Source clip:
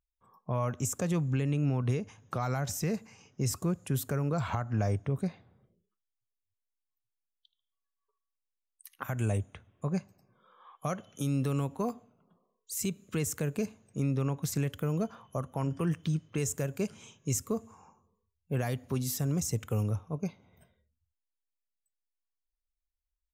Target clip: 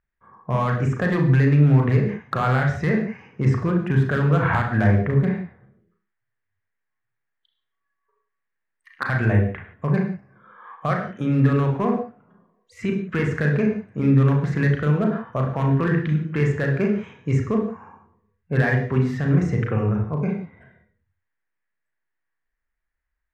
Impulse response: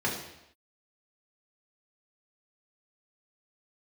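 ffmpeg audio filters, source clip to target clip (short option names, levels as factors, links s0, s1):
-filter_complex "[0:a]lowpass=f=1800:t=q:w=4.1,asoftclip=type=hard:threshold=0.0841,asplit=2[s0][s1];[1:a]atrim=start_sample=2205,afade=t=out:st=0.2:d=0.01,atrim=end_sample=9261,adelay=34[s2];[s1][s2]afir=irnorm=-1:irlink=0,volume=0.299[s3];[s0][s3]amix=inputs=2:normalize=0,volume=2.24"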